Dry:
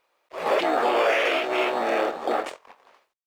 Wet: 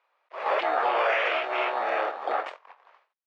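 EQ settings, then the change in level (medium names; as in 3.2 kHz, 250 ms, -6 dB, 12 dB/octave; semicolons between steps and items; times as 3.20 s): high-pass 830 Hz 12 dB/octave; low-pass 1.7 kHz 6 dB/octave; distance through air 110 m; +3.5 dB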